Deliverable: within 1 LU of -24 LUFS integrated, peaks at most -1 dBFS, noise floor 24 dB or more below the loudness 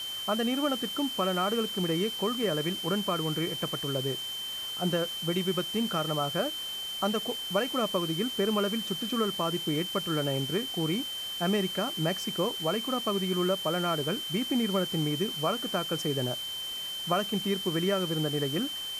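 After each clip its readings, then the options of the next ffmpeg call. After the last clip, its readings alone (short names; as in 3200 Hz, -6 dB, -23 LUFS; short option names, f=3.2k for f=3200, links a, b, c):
steady tone 3100 Hz; tone level -34 dBFS; noise floor -37 dBFS; noise floor target -54 dBFS; loudness -29.5 LUFS; peak -13.5 dBFS; loudness target -24.0 LUFS
-> -af "bandreject=f=3.1k:w=30"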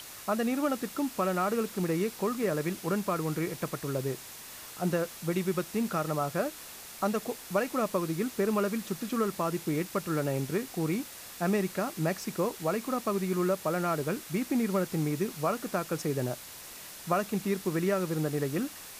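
steady tone none; noise floor -46 dBFS; noise floor target -55 dBFS
-> -af "afftdn=nr=9:nf=-46"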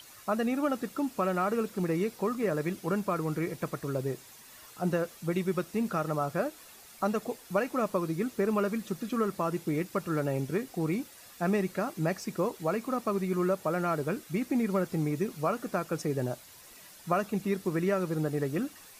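noise floor -52 dBFS; noise floor target -56 dBFS
-> -af "afftdn=nr=6:nf=-52"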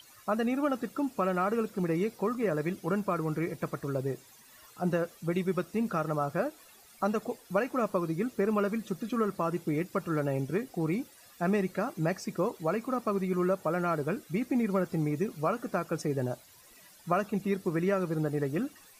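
noise floor -57 dBFS; loudness -31.5 LUFS; peak -13.5 dBFS; loudness target -24.0 LUFS
-> -af "volume=7.5dB"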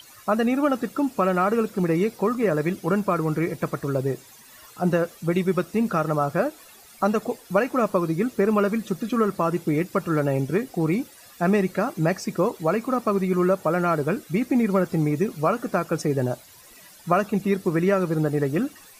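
loudness -24.0 LUFS; peak -6.0 dBFS; noise floor -49 dBFS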